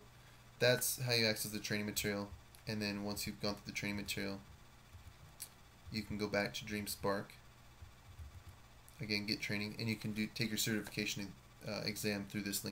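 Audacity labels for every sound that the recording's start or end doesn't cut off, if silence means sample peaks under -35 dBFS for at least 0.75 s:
5.420000	7.200000	sound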